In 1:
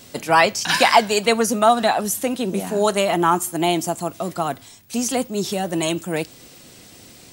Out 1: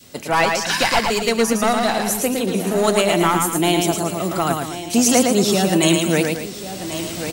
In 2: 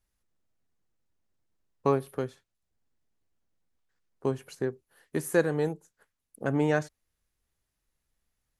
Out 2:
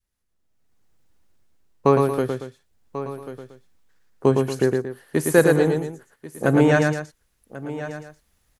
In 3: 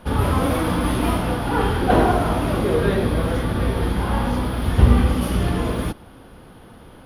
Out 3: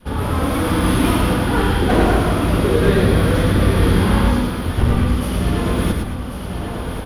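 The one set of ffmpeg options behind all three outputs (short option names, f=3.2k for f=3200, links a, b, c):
-filter_complex "[0:a]aeval=exprs='clip(val(0),-1,0.188)':c=same,asplit=2[a][b];[b]aecho=0:1:1090:0.133[c];[a][c]amix=inputs=2:normalize=0,dynaudnorm=f=260:g=5:m=14.5dB,adynamicequalizer=threshold=0.0316:dfrequency=770:dqfactor=1.3:tfrequency=770:tqfactor=1.3:attack=5:release=100:ratio=0.375:range=3:mode=cutabove:tftype=bell,asplit=2[d][e];[e]aecho=0:1:110.8|230.3:0.631|0.251[f];[d][f]amix=inputs=2:normalize=0,volume=-1.5dB"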